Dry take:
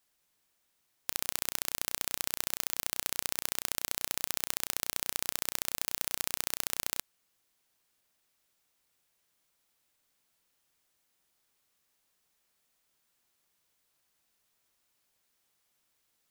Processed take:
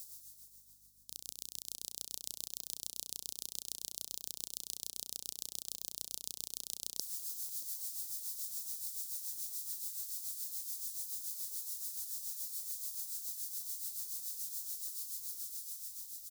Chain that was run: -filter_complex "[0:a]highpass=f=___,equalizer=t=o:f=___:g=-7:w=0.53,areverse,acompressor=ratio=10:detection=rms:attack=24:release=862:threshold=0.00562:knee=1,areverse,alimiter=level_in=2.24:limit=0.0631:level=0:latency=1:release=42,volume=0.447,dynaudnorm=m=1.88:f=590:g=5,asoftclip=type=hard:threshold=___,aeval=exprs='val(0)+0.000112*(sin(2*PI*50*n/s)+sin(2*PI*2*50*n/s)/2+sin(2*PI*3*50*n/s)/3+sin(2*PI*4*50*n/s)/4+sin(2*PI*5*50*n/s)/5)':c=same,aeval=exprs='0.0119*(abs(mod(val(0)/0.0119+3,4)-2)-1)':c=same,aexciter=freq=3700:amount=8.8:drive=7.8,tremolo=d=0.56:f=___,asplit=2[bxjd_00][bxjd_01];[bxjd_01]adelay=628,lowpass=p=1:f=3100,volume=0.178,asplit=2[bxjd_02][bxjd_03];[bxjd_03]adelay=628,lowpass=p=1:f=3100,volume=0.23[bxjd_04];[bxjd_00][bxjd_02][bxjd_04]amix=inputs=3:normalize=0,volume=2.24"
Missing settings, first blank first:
380, 2700, 0.0237, 7